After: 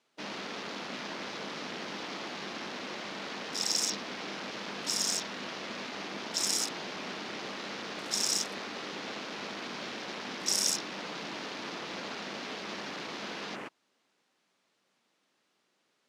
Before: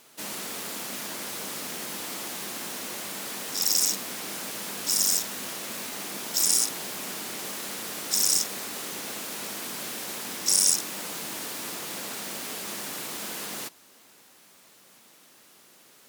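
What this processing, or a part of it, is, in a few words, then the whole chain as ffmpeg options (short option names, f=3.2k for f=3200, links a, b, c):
over-cleaned archive recording: -af "highpass=130,lowpass=5k,afwtdn=0.00708"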